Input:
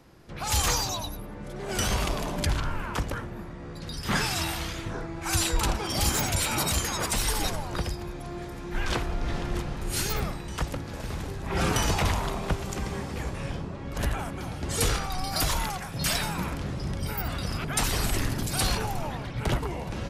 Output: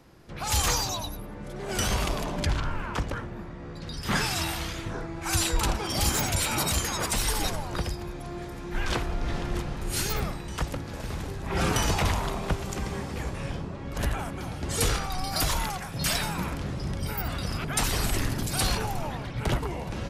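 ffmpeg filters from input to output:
ffmpeg -i in.wav -filter_complex "[0:a]asettb=1/sr,asplit=3[link_01][link_02][link_03];[link_01]atrim=end=2.244[link_04];[link_02]atrim=start=2.24:end=4.02,asetpts=PTS-STARTPTS,afade=type=in:duration=0.004:curve=qsin,afade=type=out:start_time=1.776:duration=0.004:curve=qsin,equalizer=frequency=13000:width_type=o:width=1:gain=-9.5[link_05];[link_03]atrim=start=4.016[link_06];[link_04][link_05]acrossfade=duration=0.004:curve1=hsin:curve2=qsin[link_07];[link_07][link_06]acrossfade=duration=0.004:curve1=qsin:curve2=hsin" out.wav

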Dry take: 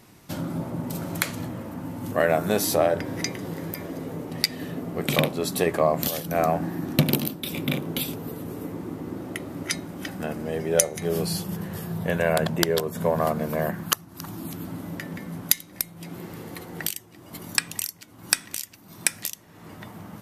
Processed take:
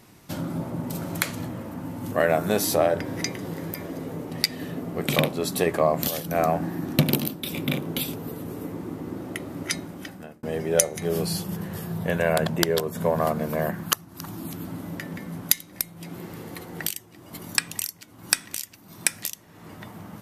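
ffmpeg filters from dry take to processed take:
ffmpeg -i in.wav -filter_complex "[0:a]asplit=2[link_01][link_02];[link_01]atrim=end=10.43,asetpts=PTS-STARTPTS,afade=type=out:start_time=9.82:duration=0.61[link_03];[link_02]atrim=start=10.43,asetpts=PTS-STARTPTS,afade=type=in:duration=0.004:curve=hsin[link_04];[link_03][link_04]concat=n=2:v=0:a=1" out.wav

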